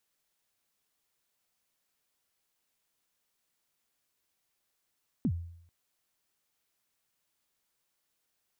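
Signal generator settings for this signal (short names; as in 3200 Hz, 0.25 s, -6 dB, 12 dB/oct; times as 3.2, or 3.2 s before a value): kick drum length 0.44 s, from 290 Hz, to 85 Hz, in 66 ms, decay 0.69 s, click off, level -23 dB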